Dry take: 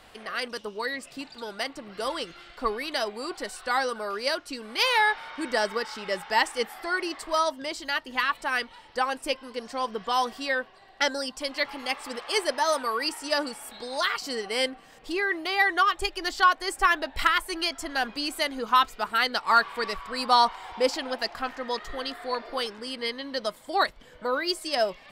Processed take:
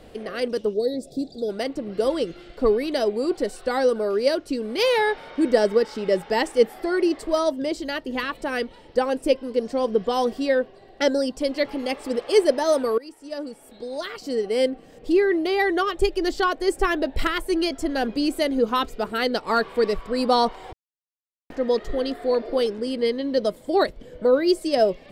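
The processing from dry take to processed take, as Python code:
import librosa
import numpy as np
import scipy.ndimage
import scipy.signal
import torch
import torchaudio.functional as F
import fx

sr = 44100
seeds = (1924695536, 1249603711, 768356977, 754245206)

y = fx.spec_box(x, sr, start_s=0.74, length_s=0.75, low_hz=830.0, high_hz=3300.0, gain_db=-20)
y = fx.edit(y, sr, fx.fade_in_from(start_s=12.98, length_s=2.36, floor_db=-19.5),
    fx.silence(start_s=20.73, length_s=0.77), tone=tone)
y = fx.low_shelf_res(y, sr, hz=690.0, db=12.0, q=1.5)
y = y * 10.0 ** (-1.5 / 20.0)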